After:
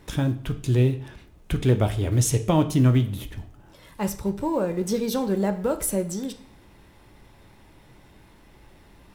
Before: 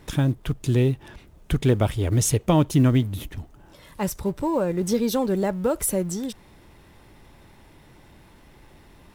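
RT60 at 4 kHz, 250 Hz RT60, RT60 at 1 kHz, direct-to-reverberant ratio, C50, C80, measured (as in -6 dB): 0.45 s, 0.50 s, 0.50 s, 7.5 dB, 13.5 dB, 17.0 dB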